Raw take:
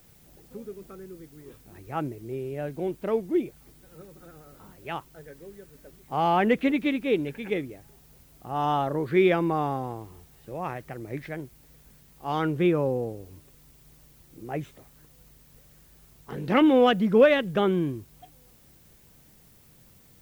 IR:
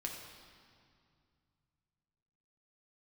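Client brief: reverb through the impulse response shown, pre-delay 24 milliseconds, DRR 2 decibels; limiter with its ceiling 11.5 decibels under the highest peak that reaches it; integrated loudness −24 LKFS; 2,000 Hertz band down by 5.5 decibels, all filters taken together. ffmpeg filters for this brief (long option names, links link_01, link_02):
-filter_complex "[0:a]equalizer=frequency=2000:width_type=o:gain=-7,alimiter=limit=-20dB:level=0:latency=1,asplit=2[link_01][link_02];[1:a]atrim=start_sample=2205,adelay=24[link_03];[link_02][link_03]afir=irnorm=-1:irlink=0,volume=-2dB[link_04];[link_01][link_04]amix=inputs=2:normalize=0,volume=5.5dB"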